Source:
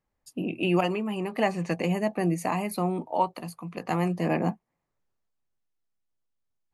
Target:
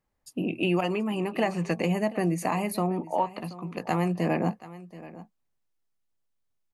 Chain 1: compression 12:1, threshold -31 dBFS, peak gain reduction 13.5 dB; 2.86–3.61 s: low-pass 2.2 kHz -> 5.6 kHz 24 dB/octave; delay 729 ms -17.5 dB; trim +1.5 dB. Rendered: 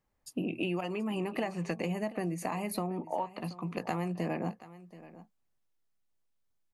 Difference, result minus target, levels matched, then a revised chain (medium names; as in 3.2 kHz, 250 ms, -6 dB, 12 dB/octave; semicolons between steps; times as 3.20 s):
compression: peak gain reduction +8.5 dB
compression 12:1, threshold -21.5 dBFS, peak gain reduction 5 dB; 2.86–3.61 s: low-pass 2.2 kHz -> 5.6 kHz 24 dB/octave; delay 729 ms -17.5 dB; trim +1.5 dB